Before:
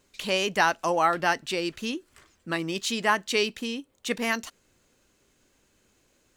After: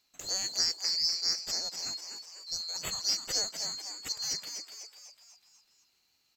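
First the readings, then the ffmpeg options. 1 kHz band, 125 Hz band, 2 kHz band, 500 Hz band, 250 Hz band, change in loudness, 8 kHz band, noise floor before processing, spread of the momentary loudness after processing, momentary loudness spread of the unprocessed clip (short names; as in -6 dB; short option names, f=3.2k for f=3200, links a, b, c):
-23.0 dB, -15.0 dB, -19.5 dB, -21.0 dB, -23.5 dB, -4.0 dB, +5.0 dB, -68 dBFS, 13 LU, 11 LU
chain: -filter_complex "[0:a]afftfilt=real='real(if(lt(b,736),b+184*(1-2*mod(floor(b/184),2)),b),0)':imag='imag(if(lt(b,736),b+184*(1-2*mod(floor(b/184),2)),b),0)':win_size=2048:overlap=0.75,asplit=7[a][b][c][d][e][f][g];[b]adelay=248,afreqshift=140,volume=-7dB[h];[c]adelay=496,afreqshift=280,volume=-12.7dB[i];[d]adelay=744,afreqshift=420,volume=-18.4dB[j];[e]adelay=992,afreqshift=560,volume=-24dB[k];[f]adelay=1240,afreqshift=700,volume=-29.7dB[l];[g]adelay=1488,afreqshift=840,volume=-35.4dB[m];[a][h][i][j][k][l][m]amix=inputs=7:normalize=0,volume=-7.5dB"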